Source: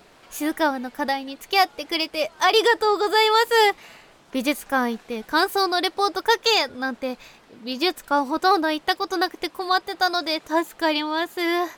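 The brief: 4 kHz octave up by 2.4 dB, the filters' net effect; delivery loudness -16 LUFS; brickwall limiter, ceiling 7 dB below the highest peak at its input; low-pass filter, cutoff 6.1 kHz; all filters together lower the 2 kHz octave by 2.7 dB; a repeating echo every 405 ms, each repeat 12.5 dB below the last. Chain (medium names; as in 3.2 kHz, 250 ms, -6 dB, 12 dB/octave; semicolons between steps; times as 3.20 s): low-pass 6.1 kHz; peaking EQ 2 kHz -4.5 dB; peaking EQ 4 kHz +5 dB; peak limiter -13 dBFS; feedback delay 405 ms, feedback 24%, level -12.5 dB; trim +8.5 dB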